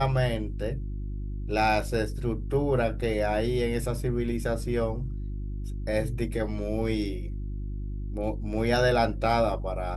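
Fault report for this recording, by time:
hum 50 Hz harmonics 7 -33 dBFS

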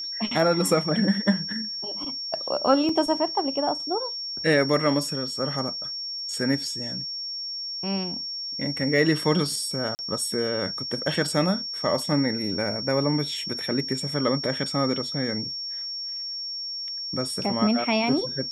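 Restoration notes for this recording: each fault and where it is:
whine 5.5 kHz -30 dBFS
2.89 s: dropout 3 ms
9.95–9.99 s: dropout 39 ms

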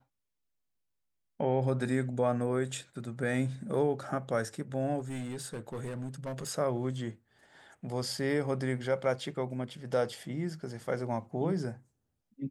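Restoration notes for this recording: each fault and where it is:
4.99–6.50 s: clipped -33.5 dBFS

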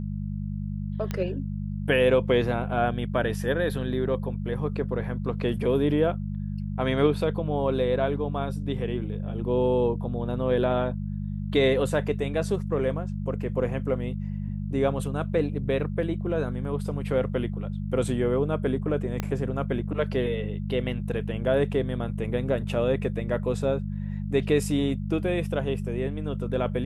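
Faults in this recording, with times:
hum 50 Hz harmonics 4 -31 dBFS
1.11 s: pop -16 dBFS
19.20 s: pop -14 dBFS

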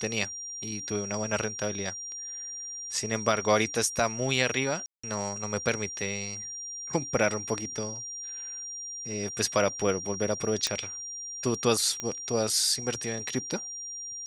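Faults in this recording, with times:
whine 5.7 kHz -36 dBFS
4.86–5.04 s: dropout 175 ms
10.67 s: pop -12 dBFS
12.00 s: pop -17 dBFS

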